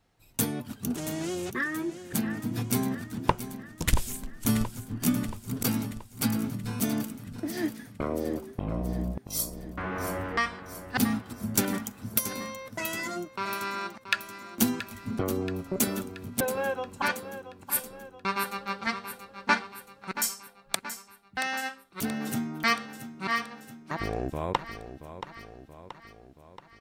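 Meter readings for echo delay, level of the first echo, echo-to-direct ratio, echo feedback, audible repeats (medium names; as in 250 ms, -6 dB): 678 ms, -11.5 dB, -10.0 dB, 57%, 5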